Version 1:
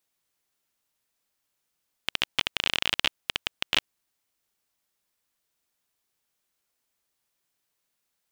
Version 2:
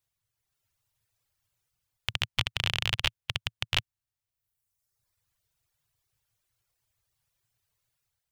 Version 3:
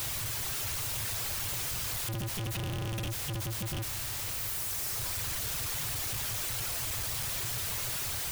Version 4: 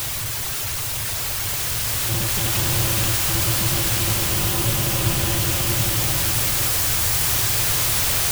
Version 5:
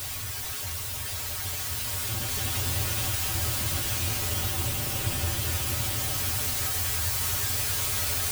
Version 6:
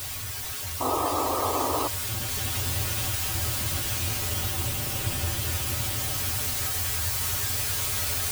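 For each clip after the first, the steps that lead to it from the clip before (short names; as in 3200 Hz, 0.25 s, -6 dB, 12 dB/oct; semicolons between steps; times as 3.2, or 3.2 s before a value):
resonant low shelf 160 Hz +12 dB, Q 3; reverb removal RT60 1.2 s; AGC gain up to 6.5 dB; gain -5 dB
infinite clipping; gain +4.5 dB
bloom reverb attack 2.4 s, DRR -4.5 dB; gain +8.5 dB
resonator 85 Hz, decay 0.15 s, harmonics odd, mix 90%
painted sound noise, 0.8–1.88, 250–1300 Hz -27 dBFS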